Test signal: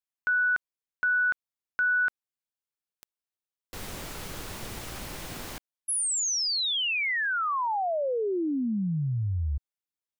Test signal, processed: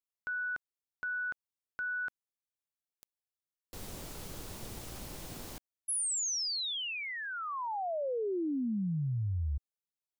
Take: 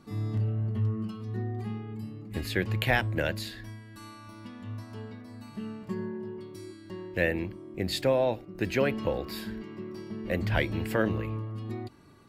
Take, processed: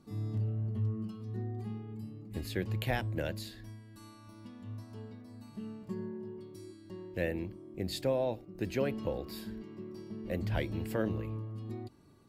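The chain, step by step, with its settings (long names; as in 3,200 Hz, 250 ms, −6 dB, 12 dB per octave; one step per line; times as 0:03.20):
parametric band 1,800 Hz −7 dB 2 octaves
level −4.5 dB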